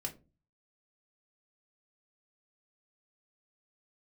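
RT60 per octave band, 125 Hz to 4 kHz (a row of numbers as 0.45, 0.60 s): 0.60, 0.45, 0.35, 0.25, 0.20, 0.15 s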